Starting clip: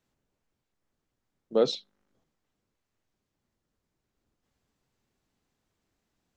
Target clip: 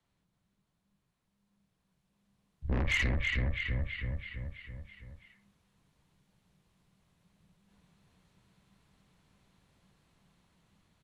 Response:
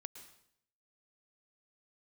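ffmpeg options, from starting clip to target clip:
-filter_complex "[0:a]afreqshift=-350,aecho=1:1:190|380|570|760|950|1140|1330:0.501|0.276|0.152|0.0834|0.0459|0.0252|0.0139,asoftclip=type=tanh:threshold=-30dB,acrossover=split=100|640[a][b][c];[b]acompressor=threshold=-41dB:ratio=6[d];[a][d][c]amix=inputs=3:normalize=0,equalizer=f=1.8k:t=o:w=0.22:g=4,dynaudnorm=f=280:g=11:m=9dB,asetrate=25442,aresample=44100,equalizer=f=230:t=o:w=0.7:g=4"

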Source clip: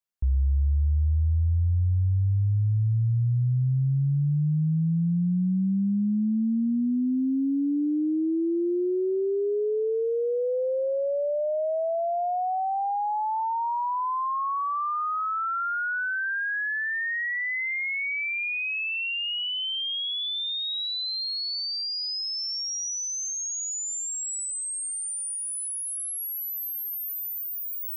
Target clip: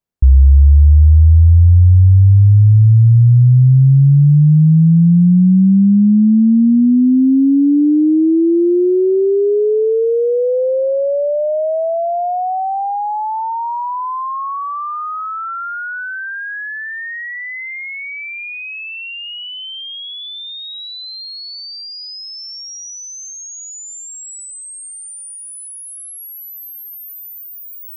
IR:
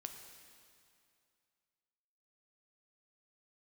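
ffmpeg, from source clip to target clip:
-af "tiltshelf=f=780:g=8,volume=8dB"

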